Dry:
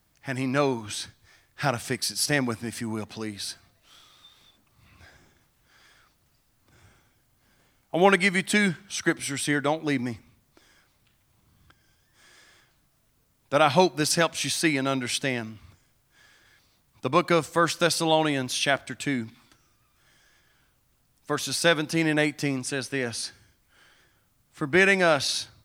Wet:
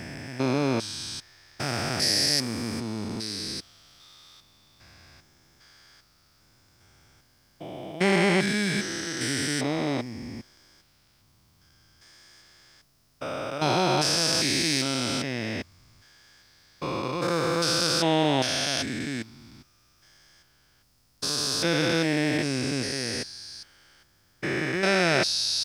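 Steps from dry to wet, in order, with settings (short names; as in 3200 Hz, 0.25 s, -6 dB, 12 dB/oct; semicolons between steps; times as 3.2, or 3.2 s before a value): stepped spectrum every 0.4 s; bell 5100 Hz +10.5 dB 0.45 oct; gain +3 dB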